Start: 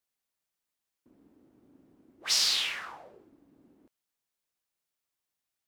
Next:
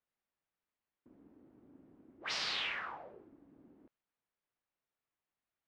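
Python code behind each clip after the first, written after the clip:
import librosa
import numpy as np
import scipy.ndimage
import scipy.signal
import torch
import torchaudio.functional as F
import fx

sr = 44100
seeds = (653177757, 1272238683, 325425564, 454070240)

y = scipy.signal.sosfilt(scipy.signal.butter(2, 2200.0, 'lowpass', fs=sr, output='sos'), x)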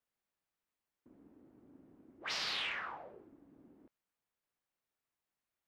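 y = 10.0 ** (-26.5 / 20.0) * np.tanh(x / 10.0 ** (-26.5 / 20.0))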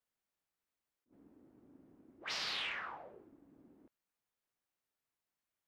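y = fx.attack_slew(x, sr, db_per_s=310.0)
y = y * 10.0 ** (-1.5 / 20.0)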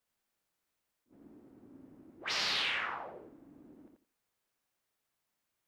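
y = fx.echo_feedback(x, sr, ms=86, feedback_pct=20, wet_db=-4.0)
y = y * 10.0 ** (5.0 / 20.0)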